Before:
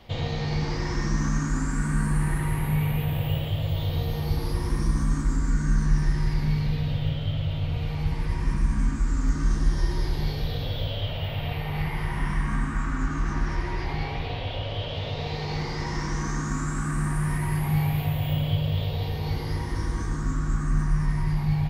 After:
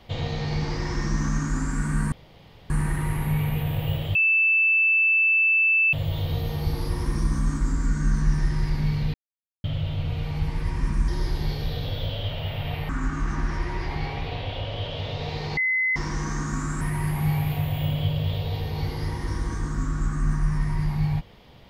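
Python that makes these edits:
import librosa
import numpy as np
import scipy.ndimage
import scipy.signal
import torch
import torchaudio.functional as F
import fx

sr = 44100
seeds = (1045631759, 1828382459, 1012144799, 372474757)

y = fx.edit(x, sr, fx.insert_room_tone(at_s=2.12, length_s=0.58),
    fx.insert_tone(at_s=3.57, length_s=1.78, hz=2640.0, db=-16.5),
    fx.silence(start_s=6.78, length_s=0.5),
    fx.cut(start_s=8.72, length_s=1.14),
    fx.cut(start_s=11.67, length_s=1.2),
    fx.bleep(start_s=15.55, length_s=0.39, hz=2040.0, db=-20.0),
    fx.cut(start_s=16.79, length_s=0.5), tone=tone)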